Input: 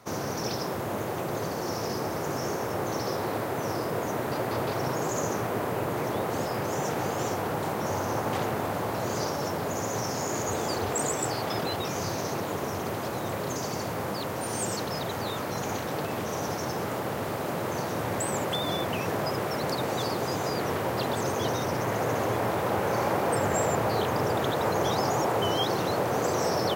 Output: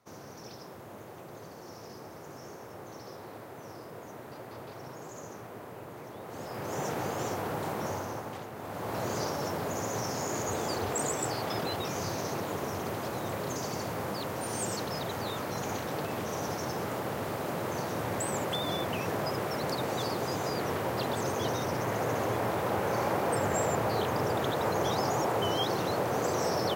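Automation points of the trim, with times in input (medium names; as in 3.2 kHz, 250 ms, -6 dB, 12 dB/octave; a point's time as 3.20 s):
6.18 s -15 dB
6.80 s -4 dB
7.85 s -4 dB
8.50 s -14 dB
8.97 s -3 dB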